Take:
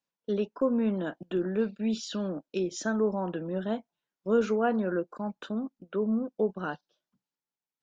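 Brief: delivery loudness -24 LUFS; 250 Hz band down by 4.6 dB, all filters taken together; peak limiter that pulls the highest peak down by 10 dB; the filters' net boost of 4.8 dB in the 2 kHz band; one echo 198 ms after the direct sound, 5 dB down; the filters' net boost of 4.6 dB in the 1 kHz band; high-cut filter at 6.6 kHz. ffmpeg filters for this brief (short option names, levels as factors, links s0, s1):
-af "lowpass=6600,equalizer=f=250:t=o:g=-6,equalizer=f=1000:t=o:g=6,equalizer=f=2000:t=o:g=4,alimiter=limit=0.0668:level=0:latency=1,aecho=1:1:198:0.562,volume=2.99"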